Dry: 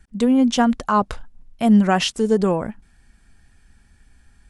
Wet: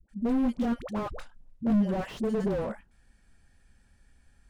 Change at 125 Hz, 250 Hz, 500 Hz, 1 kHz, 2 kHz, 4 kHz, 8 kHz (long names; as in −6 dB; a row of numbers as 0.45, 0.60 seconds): −9.5 dB, −10.0 dB, −10.5 dB, −16.5 dB, −15.5 dB, −21.5 dB, below −20 dB